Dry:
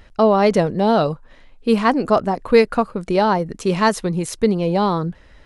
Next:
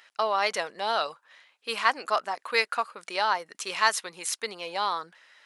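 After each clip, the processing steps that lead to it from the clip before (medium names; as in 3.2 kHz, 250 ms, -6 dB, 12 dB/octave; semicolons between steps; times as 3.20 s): high-pass 1.3 kHz 12 dB/octave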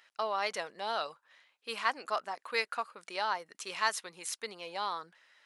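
bass shelf 220 Hz +3.5 dB; trim -7.5 dB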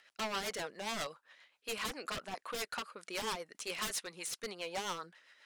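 wavefolder -33.5 dBFS; rotary cabinet horn 7.5 Hz; trim +4 dB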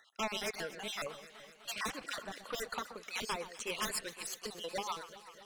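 random holes in the spectrogram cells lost 44%; echo whose repeats swap between lows and highs 126 ms, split 1.7 kHz, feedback 80%, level -12.5 dB; trim +2.5 dB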